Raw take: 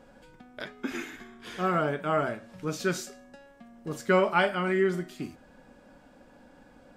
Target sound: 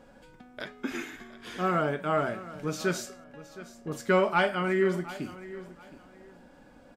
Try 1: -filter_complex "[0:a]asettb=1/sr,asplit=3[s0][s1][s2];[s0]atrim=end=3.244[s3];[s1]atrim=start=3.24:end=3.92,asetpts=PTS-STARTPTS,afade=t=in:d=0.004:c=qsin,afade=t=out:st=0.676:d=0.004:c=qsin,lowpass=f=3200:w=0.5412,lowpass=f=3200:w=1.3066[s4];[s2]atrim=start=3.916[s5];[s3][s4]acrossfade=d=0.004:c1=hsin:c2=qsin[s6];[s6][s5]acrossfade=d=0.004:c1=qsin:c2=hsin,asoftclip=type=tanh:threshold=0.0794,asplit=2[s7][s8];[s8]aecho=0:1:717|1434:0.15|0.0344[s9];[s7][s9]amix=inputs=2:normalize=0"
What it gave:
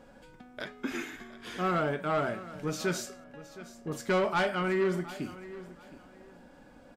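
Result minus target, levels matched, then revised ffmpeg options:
saturation: distortion +15 dB
-filter_complex "[0:a]asettb=1/sr,asplit=3[s0][s1][s2];[s0]atrim=end=3.244[s3];[s1]atrim=start=3.24:end=3.92,asetpts=PTS-STARTPTS,afade=t=in:d=0.004:c=qsin,afade=t=out:st=0.676:d=0.004:c=qsin,lowpass=f=3200:w=0.5412,lowpass=f=3200:w=1.3066[s4];[s2]atrim=start=3.916[s5];[s3][s4]acrossfade=d=0.004:c1=hsin:c2=qsin[s6];[s6][s5]acrossfade=d=0.004:c1=qsin:c2=hsin,asoftclip=type=tanh:threshold=0.282,asplit=2[s7][s8];[s8]aecho=0:1:717|1434:0.15|0.0344[s9];[s7][s9]amix=inputs=2:normalize=0"

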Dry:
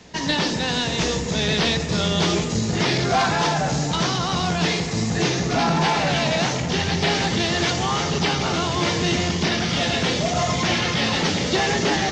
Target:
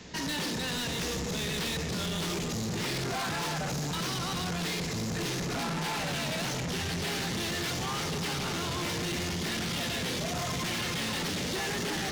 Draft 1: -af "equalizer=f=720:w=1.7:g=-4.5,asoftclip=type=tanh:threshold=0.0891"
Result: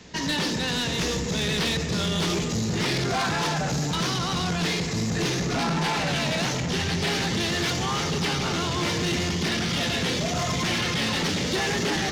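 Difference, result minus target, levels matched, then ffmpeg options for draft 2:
saturation: distortion -7 dB
-af "equalizer=f=720:w=1.7:g=-4.5,asoftclip=type=tanh:threshold=0.0282"

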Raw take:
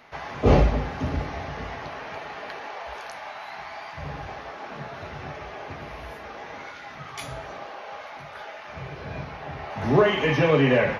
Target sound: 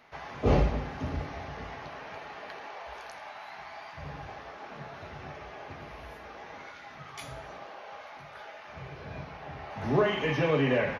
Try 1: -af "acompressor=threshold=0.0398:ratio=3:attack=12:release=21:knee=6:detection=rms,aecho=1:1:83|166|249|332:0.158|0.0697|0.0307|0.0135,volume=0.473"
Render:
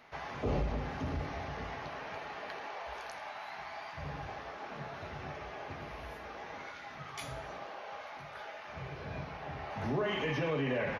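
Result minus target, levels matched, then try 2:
compression: peak gain reduction +11 dB
-af "aecho=1:1:83|166|249|332:0.158|0.0697|0.0307|0.0135,volume=0.473"

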